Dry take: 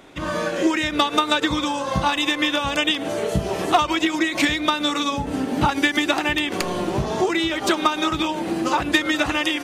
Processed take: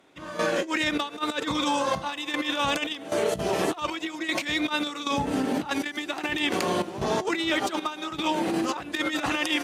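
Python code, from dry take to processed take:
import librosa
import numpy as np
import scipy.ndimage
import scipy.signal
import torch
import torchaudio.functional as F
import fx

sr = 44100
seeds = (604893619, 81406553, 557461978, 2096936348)

y = fx.cheby_harmonics(x, sr, harmonics=(2, 3, 4, 6), levels_db=(-17, -32, -27, -30), full_scale_db=-7.5)
y = fx.step_gate(y, sr, bpm=77, pattern='..xxx.xxxx', floor_db=-12.0, edge_ms=4.5)
y = fx.over_compress(y, sr, threshold_db=-24.0, ratio=-0.5)
y = fx.highpass(y, sr, hz=160.0, slope=6)
y = y * 10.0 ** (-1.0 / 20.0)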